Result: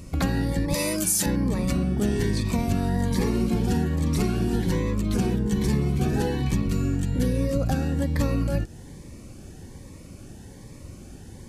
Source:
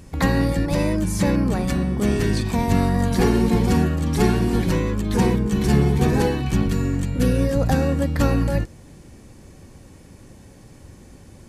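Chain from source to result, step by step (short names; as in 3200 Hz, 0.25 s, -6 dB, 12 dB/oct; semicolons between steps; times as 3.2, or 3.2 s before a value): 0.74–1.26 RIAA curve recording; compressor 4:1, threshold -23 dBFS, peak gain reduction 10 dB; cascading phaser rising 1.2 Hz; gain +2.5 dB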